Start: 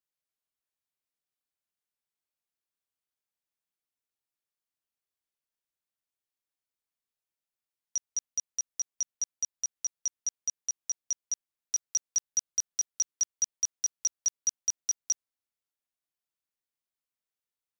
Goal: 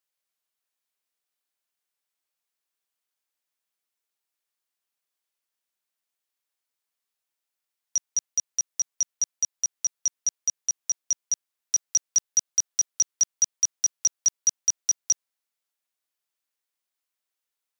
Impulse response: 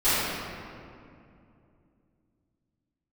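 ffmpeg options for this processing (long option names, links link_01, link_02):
-af "highpass=frequency=240:poles=1,lowshelf=frequency=430:gain=-6,volume=6.5dB"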